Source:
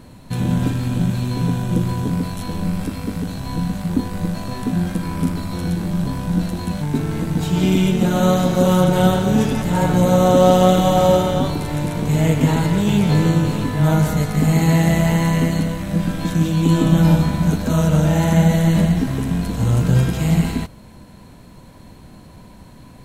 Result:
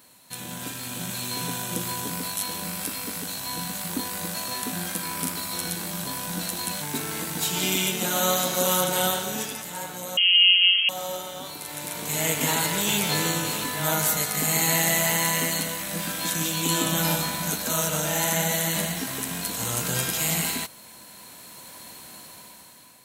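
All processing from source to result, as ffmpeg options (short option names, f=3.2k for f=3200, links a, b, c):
-filter_complex "[0:a]asettb=1/sr,asplit=3[a][b][c];[a]atrim=end=10.174[d];[b]atrim=start=10.17:end=10.89,asetpts=PTS-STARTPTS,afade=t=in:d=0.004:c=qsin,afade=t=out:st=0.716:d=0.004:c=qsin,highpass=340,tiltshelf=f=1.4k:g=9.5,lowpass=f=2.9k:t=q:w=0.5098,lowpass=f=2.9k:t=q:w=0.6013,lowpass=f=2.9k:t=q:w=0.9,lowpass=f=2.9k:t=q:w=2.563,afreqshift=-3400[e];[c]atrim=start=10.886[f];[d][e]acrossfade=d=0.004:c1=hsin:c2=qsin[g];[g][f]acrossfade=d=0.004:c1=qsin:c2=hsin,highpass=f=1.3k:p=1,aemphasis=mode=production:type=50kf,dynaudnorm=f=270:g=7:m=11.5dB,volume=-5.5dB"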